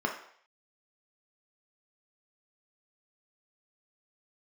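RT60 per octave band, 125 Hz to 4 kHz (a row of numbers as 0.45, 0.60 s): 0.40, 0.45, 0.60, 0.65, 0.65, 0.60 s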